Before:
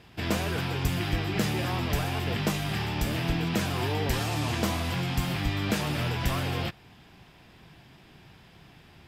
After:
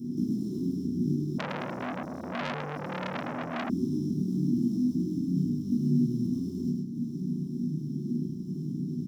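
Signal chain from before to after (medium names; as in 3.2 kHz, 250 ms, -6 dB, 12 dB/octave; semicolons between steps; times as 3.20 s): median filter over 25 samples; compression 8:1, threshold -41 dBFS, peak gain reduction 19 dB; one-sided clip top -53.5 dBFS; doubling 33 ms -5.5 dB; feedback delay 103 ms, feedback 30%, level -3.5 dB; upward compressor, threshold -44 dBFS; gate -51 dBFS, range -8 dB; inverse Chebyshev band-stop 490–2700 Hz, stop band 40 dB; reverberation, pre-delay 3 ms, DRR -3.5 dB; 1.38–3.70 s: transformer saturation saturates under 2.3 kHz; trim +5 dB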